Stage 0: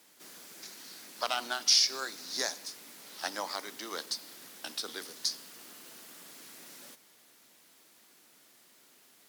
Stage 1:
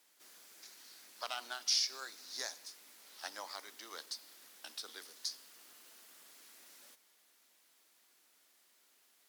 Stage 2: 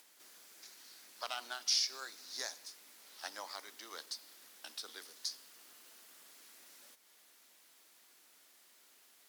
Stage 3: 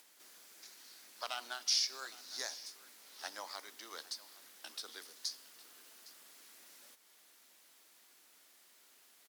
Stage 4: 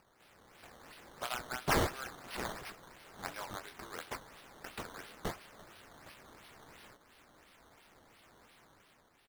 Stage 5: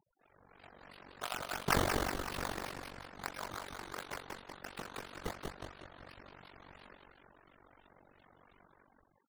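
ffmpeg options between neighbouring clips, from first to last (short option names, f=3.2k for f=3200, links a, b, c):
-af "highpass=f=600:p=1,volume=-8dB"
-af "acompressor=mode=upward:threshold=-57dB:ratio=2.5"
-af "aecho=1:1:811:0.112"
-filter_complex "[0:a]asplit=2[a][b];[b]adelay=24,volume=-6dB[c];[a][c]amix=inputs=2:normalize=0,dynaudnorm=f=110:g=11:m=7dB,acrusher=samples=12:mix=1:aa=0.000001:lfo=1:lforange=12:lforate=2.9,volume=-5.5dB"
-filter_complex "[0:a]asplit=9[a][b][c][d][e][f][g][h][i];[b]adelay=185,afreqshift=-39,volume=-3.5dB[j];[c]adelay=370,afreqshift=-78,volume=-8.4dB[k];[d]adelay=555,afreqshift=-117,volume=-13.3dB[l];[e]adelay=740,afreqshift=-156,volume=-18.1dB[m];[f]adelay=925,afreqshift=-195,volume=-23dB[n];[g]adelay=1110,afreqshift=-234,volume=-27.9dB[o];[h]adelay=1295,afreqshift=-273,volume=-32.8dB[p];[i]adelay=1480,afreqshift=-312,volume=-37.7dB[q];[a][j][k][l][m][n][o][p][q]amix=inputs=9:normalize=0,afftfilt=real='re*gte(hypot(re,im),0.00158)':imag='im*gte(hypot(re,im),0.00158)':win_size=1024:overlap=0.75,tremolo=f=47:d=0.919,volume=2.5dB"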